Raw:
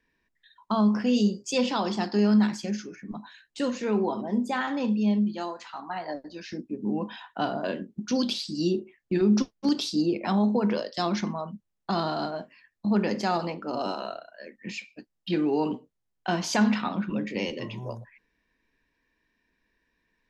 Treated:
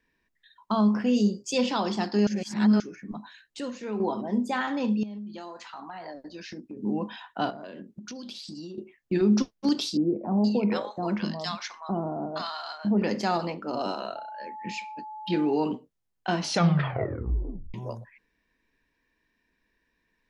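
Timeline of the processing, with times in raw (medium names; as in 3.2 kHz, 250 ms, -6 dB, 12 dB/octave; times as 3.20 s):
0.92–1.58 s: peaking EQ 6.9 kHz -> 1.3 kHz -7 dB
2.27–2.80 s: reverse
3.60–4.00 s: gain -6.5 dB
5.03–6.77 s: compression 12:1, threshold -35 dBFS
7.50–8.78 s: compression 16:1, threshold -36 dBFS
9.97–13.02 s: bands offset in time lows, highs 470 ms, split 880 Hz
14.15–15.56 s: whistle 860 Hz -37 dBFS
16.37 s: tape stop 1.37 s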